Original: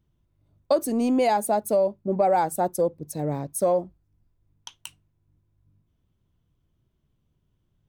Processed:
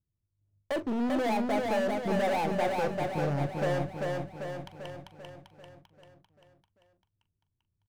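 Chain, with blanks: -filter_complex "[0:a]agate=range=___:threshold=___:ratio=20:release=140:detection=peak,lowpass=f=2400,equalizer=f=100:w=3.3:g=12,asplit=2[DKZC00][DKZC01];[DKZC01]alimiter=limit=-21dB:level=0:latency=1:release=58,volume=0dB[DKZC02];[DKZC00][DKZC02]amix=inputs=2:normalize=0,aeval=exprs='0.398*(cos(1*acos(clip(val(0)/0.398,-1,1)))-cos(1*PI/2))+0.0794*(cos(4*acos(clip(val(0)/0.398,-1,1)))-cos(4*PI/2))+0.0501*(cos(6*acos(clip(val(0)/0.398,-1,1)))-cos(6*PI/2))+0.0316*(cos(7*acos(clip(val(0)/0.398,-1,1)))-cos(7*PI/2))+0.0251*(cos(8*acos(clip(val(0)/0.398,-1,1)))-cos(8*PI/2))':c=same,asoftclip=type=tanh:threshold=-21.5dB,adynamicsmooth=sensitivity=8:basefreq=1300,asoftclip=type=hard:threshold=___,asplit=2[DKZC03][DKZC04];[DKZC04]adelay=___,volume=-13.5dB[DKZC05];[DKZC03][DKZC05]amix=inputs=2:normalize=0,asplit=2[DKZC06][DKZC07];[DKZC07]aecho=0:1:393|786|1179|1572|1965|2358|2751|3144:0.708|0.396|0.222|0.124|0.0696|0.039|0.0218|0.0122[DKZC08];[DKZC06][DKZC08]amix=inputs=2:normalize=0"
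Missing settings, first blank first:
-17dB, -58dB, -28dB, 42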